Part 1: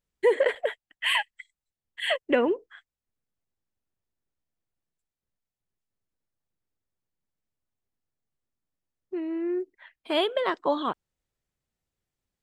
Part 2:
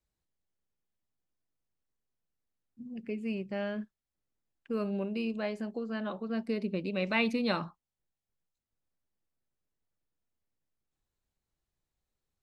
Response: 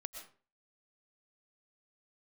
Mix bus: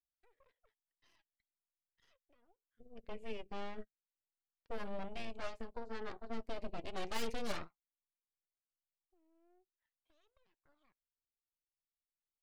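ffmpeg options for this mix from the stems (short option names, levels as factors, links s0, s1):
-filter_complex "[0:a]alimiter=limit=0.119:level=0:latency=1:release=30,acompressor=threshold=0.00708:ratio=2,volume=0.106[s0];[1:a]aeval=exprs='(tanh(17.8*val(0)+0.7)-tanh(0.7))/17.8':c=same,volume=1.06[s1];[s0][s1]amix=inputs=2:normalize=0,aeval=exprs='0.0841*(cos(1*acos(clip(val(0)/0.0841,-1,1)))-cos(1*PI/2))+0.0237*(cos(3*acos(clip(val(0)/0.0841,-1,1)))-cos(3*PI/2))+0.015*(cos(8*acos(clip(val(0)/0.0841,-1,1)))-cos(8*PI/2))':c=same,flanger=delay=1.1:depth=2.2:regen=57:speed=0.38:shape=triangular"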